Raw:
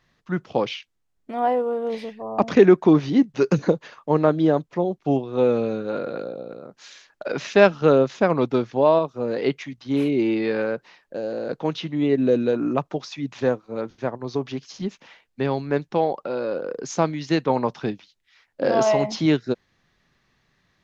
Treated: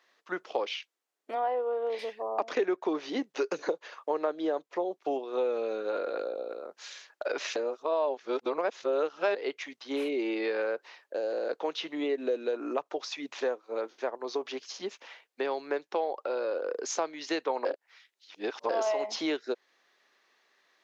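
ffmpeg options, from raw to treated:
ffmpeg -i in.wav -filter_complex "[0:a]asettb=1/sr,asplit=3[link_01][link_02][link_03];[link_01]atrim=end=1.354[link_04];[link_02]atrim=start=1.35:end=1.99,asetpts=PTS-STARTPTS,afade=type=in:duration=0.004:curve=qsin,afade=type=out:start_time=0.636:duration=0.004:curve=qsin,highpass=220,lowpass=4400[link_05];[link_03]atrim=start=1.986[link_06];[link_04][link_05]acrossfade=duration=0.004:curve1=hsin:curve2=qsin[link_07];[link_07][link_06]acrossfade=duration=0.004:curve1=qsin:curve2=hsin,asplit=5[link_08][link_09][link_10][link_11][link_12];[link_08]atrim=end=7.562[link_13];[link_09]atrim=start=7.558:end=9.352,asetpts=PTS-STARTPTS,areverse[link_14];[link_10]atrim=start=9.348:end=17.652[link_15];[link_11]atrim=start=17.648:end=18.692,asetpts=PTS-STARTPTS,areverse[link_16];[link_12]atrim=start=18.688[link_17];[link_13][link_14]acrossfade=duration=0.004:curve1=hsin:curve2=hsin[link_18];[link_18][link_15]acrossfade=duration=0.004:curve1=hsin:curve2=hsin[link_19];[link_19][link_16]acrossfade=duration=0.004:curve1=hsin:curve2=hsin[link_20];[link_20][link_17]acrossfade=duration=0.004:curve1=hsin:curve2=hsin,highpass=frequency=380:width=0.5412,highpass=frequency=380:width=1.3066,acompressor=threshold=-29dB:ratio=3" out.wav

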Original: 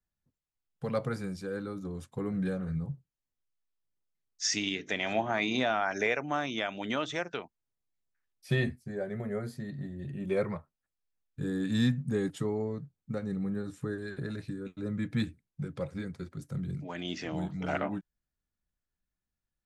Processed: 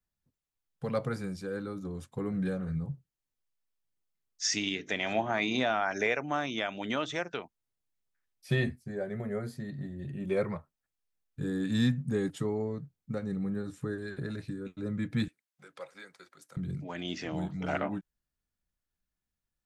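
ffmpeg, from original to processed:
ffmpeg -i in.wav -filter_complex "[0:a]asettb=1/sr,asplit=3[link_01][link_02][link_03];[link_01]atrim=end=15.284[link_04];[link_02]atrim=start=15.28:end=16.57,asetpts=PTS-STARTPTS,afade=type=in:duration=0.004:curve=qsin,afade=type=out:start_time=1.286:duration=0.004:curve=qsin,highpass=790[link_05];[link_03]atrim=start=16.566[link_06];[link_04][link_05]acrossfade=duration=0.004:curve1=hsin:curve2=qsin[link_07];[link_07][link_06]acrossfade=duration=0.004:curve1=qsin:curve2=hsin" out.wav

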